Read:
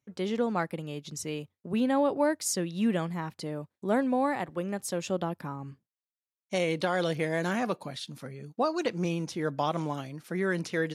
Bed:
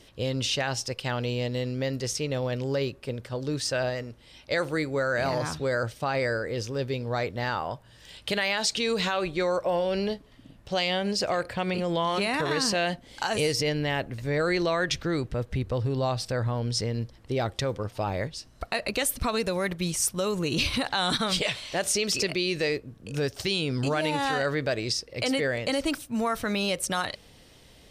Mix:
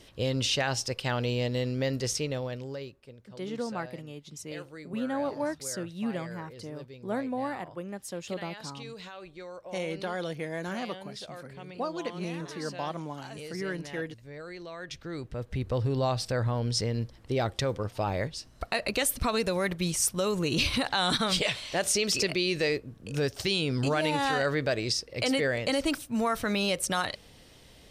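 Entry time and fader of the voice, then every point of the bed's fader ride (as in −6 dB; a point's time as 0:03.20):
3.20 s, −5.5 dB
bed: 0:02.15 0 dB
0:03.12 −17 dB
0:14.65 −17 dB
0:15.75 −0.5 dB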